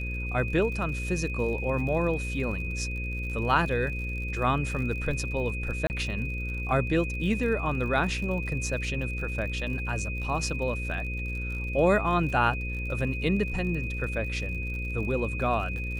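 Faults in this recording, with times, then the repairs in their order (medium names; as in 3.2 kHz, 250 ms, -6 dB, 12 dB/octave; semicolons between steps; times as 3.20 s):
buzz 60 Hz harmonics 9 -33 dBFS
crackle 58 per s -37 dBFS
whine 2.5 kHz -35 dBFS
5.87–5.90 s: dropout 29 ms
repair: de-click; band-stop 2.5 kHz, Q 30; de-hum 60 Hz, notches 9; interpolate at 5.87 s, 29 ms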